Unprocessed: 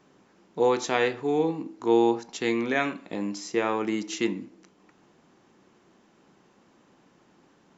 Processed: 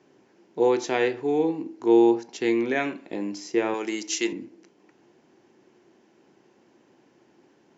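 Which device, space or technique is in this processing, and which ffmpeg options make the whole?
car door speaker: -filter_complex "[0:a]highpass=87,equalizer=frequency=180:width_type=q:width=4:gain=-6,equalizer=frequency=360:width_type=q:width=4:gain=6,equalizer=frequency=1200:width_type=q:width=4:gain=-8,equalizer=frequency=3700:width_type=q:width=4:gain=-4,lowpass=frequency=6900:width=0.5412,lowpass=frequency=6900:width=1.3066,asettb=1/sr,asplit=3[link_01][link_02][link_03];[link_01]atrim=end=3.744[link_04];[link_02]atrim=start=3.74:end=4.33,asetpts=PTS-STARTPTS,afade=type=in:duration=0.004:curve=qsin,afade=type=out:start_time=0.586:duration=0.004:curve=qsin,aemphasis=mode=production:type=riaa[link_05];[link_03]atrim=start=4.326[link_06];[link_04][link_05]acrossfade=duration=0.004:curve1=hsin:curve2=qsin[link_07];[link_07][link_06]acrossfade=duration=0.004:curve1=qsin:curve2=hsin,bandreject=frequency=50:width_type=h:width=6,bandreject=frequency=100:width_type=h:width=6"

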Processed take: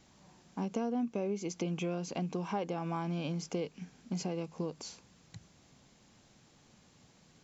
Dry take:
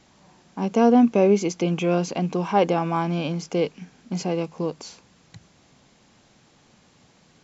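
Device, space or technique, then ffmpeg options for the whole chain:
ASMR close-microphone chain: -af "lowshelf=frequency=230:gain=5,acompressor=threshold=-24dB:ratio=5,highshelf=frequency=6400:gain=7.5,volume=-8dB"

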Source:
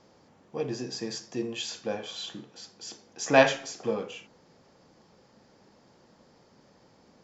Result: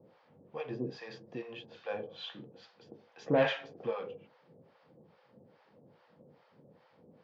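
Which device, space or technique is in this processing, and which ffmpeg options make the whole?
guitar amplifier with harmonic tremolo: -filter_complex "[0:a]acrossover=split=670[link_01][link_02];[link_01]aeval=exprs='val(0)*(1-1/2+1/2*cos(2*PI*2.4*n/s))':channel_layout=same[link_03];[link_02]aeval=exprs='val(0)*(1-1/2-1/2*cos(2*PI*2.4*n/s))':channel_layout=same[link_04];[link_03][link_04]amix=inputs=2:normalize=0,asoftclip=type=tanh:threshold=-23dB,highpass=100,equalizer=frequency=100:width_type=q:width=4:gain=5,equalizer=frequency=150:width_type=q:width=4:gain=7,equalizer=frequency=500:width_type=q:width=4:gain=7,lowpass=frequency=3500:width=0.5412,lowpass=frequency=3500:width=1.3066"

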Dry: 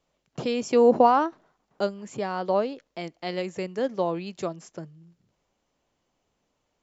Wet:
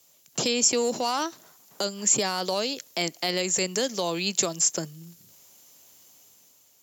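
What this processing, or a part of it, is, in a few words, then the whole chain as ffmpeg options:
FM broadcast chain: -filter_complex "[0:a]highpass=78,dynaudnorm=framelen=140:gausssize=9:maxgain=5.5dB,acrossover=split=150|2500[link_01][link_02][link_03];[link_01]acompressor=threshold=-51dB:ratio=4[link_04];[link_02]acompressor=threshold=-28dB:ratio=4[link_05];[link_03]acompressor=threshold=-42dB:ratio=4[link_06];[link_04][link_05][link_06]amix=inputs=3:normalize=0,aemphasis=mode=production:type=75fm,alimiter=limit=-21dB:level=0:latency=1:release=29,asoftclip=type=hard:threshold=-22dB,lowpass=frequency=15000:width=0.5412,lowpass=frequency=15000:width=1.3066,aemphasis=mode=production:type=75fm,volume=4dB"

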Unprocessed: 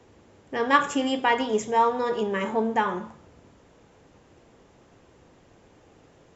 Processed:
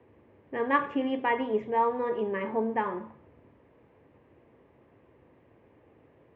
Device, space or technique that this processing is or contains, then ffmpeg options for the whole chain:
bass cabinet: -af "highpass=76,equalizer=frequency=180:width_type=q:width=4:gain=-6,equalizer=frequency=760:width_type=q:width=4:gain=-5,equalizer=frequency=1400:width_type=q:width=4:gain=-9,lowpass=frequency=2300:width=0.5412,lowpass=frequency=2300:width=1.3066,volume=-2.5dB"

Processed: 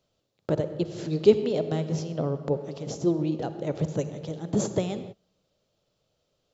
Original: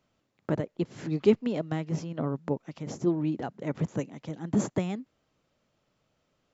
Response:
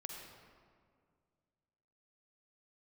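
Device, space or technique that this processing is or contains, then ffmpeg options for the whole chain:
keyed gated reverb: -filter_complex "[0:a]asplit=3[link_01][link_02][link_03];[1:a]atrim=start_sample=2205[link_04];[link_02][link_04]afir=irnorm=-1:irlink=0[link_05];[link_03]apad=whole_len=288243[link_06];[link_05][link_06]sidechaingate=range=-33dB:threshold=-49dB:ratio=16:detection=peak,volume=0dB[link_07];[link_01][link_07]amix=inputs=2:normalize=0,equalizer=frequency=250:width_type=o:width=1:gain=-7,equalizer=frequency=500:width_type=o:width=1:gain=5,equalizer=frequency=1000:width_type=o:width=1:gain=-5,equalizer=frequency=2000:width_type=o:width=1:gain=-8,equalizer=frequency=4000:width_type=o:width=1:gain=6"

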